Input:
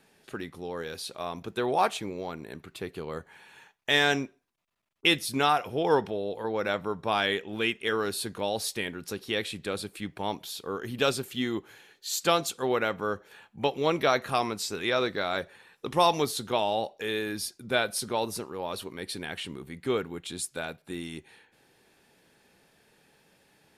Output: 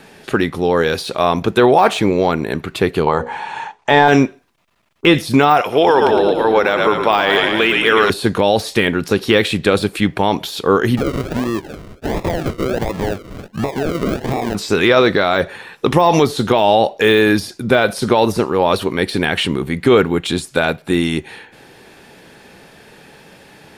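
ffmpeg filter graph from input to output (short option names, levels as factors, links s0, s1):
-filter_complex "[0:a]asettb=1/sr,asplit=3[s0][s1][s2];[s0]atrim=end=3.064[s3];[s1]atrim=start=3.06:end=4.08,asetpts=PTS-STARTPTS,afade=t=in:d=0.004:c=qsin,afade=t=out:st=1.016:d=0.004:c=qsin,lowpass=f=8700:w=0.5412,lowpass=f=8700:w=1.3066,equalizer=f=870:w=2.2:g=14.5,bandreject=f=60:t=h:w=6,bandreject=f=120:t=h:w=6,bandreject=f=180:t=h:w=6,bandreject=f=240:t=h:w=6,bandreject=f=300:t=h:w=6,bandreject=f=360:t=h:w=6,bandreject=f=420:t=h:w=6,bandreject=f=480:t=h:w=6,bandreject=f=540:t=h:w=6[s4];[s2]atrim=start=4.076[s5];[s3][s4]acrossfade=d=0.004:c1=hsin:c2=qsin[s6];[s6][s5]acrossfade=d=0.004:c1=qsin:c2=hsin,asettb=1/sr,asplit=3[s7][s8][s9];[s7]atrim=end=5.614[s10];[s8]atrim=start=5.61:end=8.1,asetpts=PTS-STARTPTS,afade=t=in:d=0.004:c=qsin,afade=t=out:st=2.486:d=0.004:c=qsin,highpass=f=610:p=1,asplit=8[s11][s12][s13][s14][s15][s16][s17][s18];[s12]adelay=111,afreqshift=-33,volume=0.398[s19];[s13]adelay=222,afreqshift=-66,volume=0.234[s20];[s14]adelay=333,afreqshift=-99,volume=0.138[s21];[s15]adelay=444,afreqshift=-132,volume=0.0822[s22];[s16]adelay=555,afreqshift=-165,volume=0.0484[s23];[s17]adelay=666,afreqshift=-198,volume=0.0285[s24];[s18]adelay=777,afreqshift=-231,volume=0.0168[s25];[s11][s19][s20][s21][s22][s23][s24][s25]amix=inputs=8:normalize=0,atrim=end_sample=109809[s26];[s9]atrim=start=8.096[s27];[s10][s26]acrossfade=d=0.004:c1=hsin:c2=qsin[s28];[s28][s27]acrossfade=d=0.004:c1=qsin:c2=hsin,asettb=1/sr,asplit=3[s29][s30][s31];[s29]atrim=end=10.974[s32];[s30]atrim=start=10.97:end=14.55,asetpts=PTS-STARTPTS,afade=t=in:d=0.004:c=qsin,afade=t=out:st=3.576:d=0.004:c=qsin,acrusher=samples=41:mix=1:aa=0.000001:lfo=1:lforange=24.6:lforate=1.4,acompressor=threshold=0.0158:ratio=6:attack=3.2:release=140:knee=1:detection=peak[s33];[s31]atrim=start=14.546[s34];[s32][s33]acrossfade=d=0.004:c1=hsin:c2=qsin[s35];[s35][s34]acrossfade=d=0.004:c1=qsin:c2=hsin,deesser=0.95,highshelf=f=5500:g=-7.5,alimiter=level_in=12.6:limit=0.891:release=50:level=0:latency=1,volume=0.891"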